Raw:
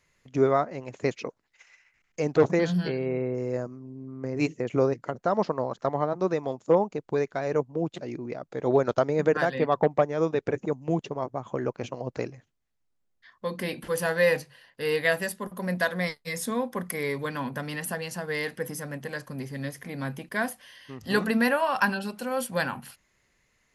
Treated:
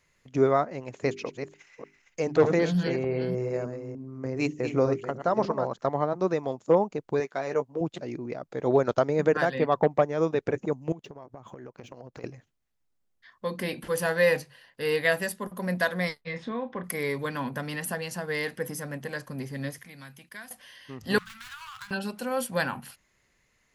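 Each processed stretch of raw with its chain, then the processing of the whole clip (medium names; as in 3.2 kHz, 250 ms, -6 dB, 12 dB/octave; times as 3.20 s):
0.94–5.68 s: chunks repeated in reverse 301 ms, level -8.5 dB + hum notches 50/100/150/200/250/300/350/400 Hz
7.20–7.81 s: high-pass 360 Hz 6 dB/octave + doubling 15 ms -8.5 dB
10.92–12.24 s: median filter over 3 samples + compression 12:1, threshold -39 dBFS
16.21–16.84 s: low-pass 3.5 kHz 24 dB/octave + compression 2.5:1, threshold -30 dBFS + doubling 31 ms -10.5 dB
19.78–20.51 s: amplifier tone stack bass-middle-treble 5-5-5 + three bands compressed up and down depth 70%
21.18–21.91 s: median filter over 25 samples + elliptic band-stop 120–1300 Hz, stop band 50 dB + compression 4:1, threshold -39 dBFS
whole clip: none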